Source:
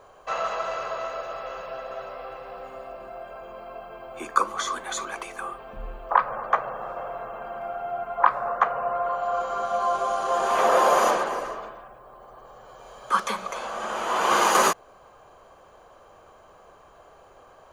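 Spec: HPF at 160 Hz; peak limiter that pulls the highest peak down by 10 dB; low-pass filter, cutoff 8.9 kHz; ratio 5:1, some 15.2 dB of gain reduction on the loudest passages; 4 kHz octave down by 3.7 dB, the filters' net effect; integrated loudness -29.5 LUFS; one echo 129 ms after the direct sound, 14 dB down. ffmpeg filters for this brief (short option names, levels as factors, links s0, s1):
-af "highpass=160,lowpass=8900,equalizer=f=4000:t=o:g=-5,acompressor=threshold=0.0251:ratio=5,alimiter=level_in=1.5:limit=0.0631:level=0:latency=1,volume=0.668,aecho=1:1:129:0.2,volume=2.51"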